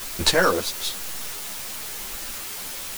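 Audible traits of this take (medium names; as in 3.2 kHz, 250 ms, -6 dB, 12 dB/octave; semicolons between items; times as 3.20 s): chopped level 1 Hz, depth 60%, duty 30%; a quantiser's noise floor 8-bit, dither triangular; a shimmering, thickened sound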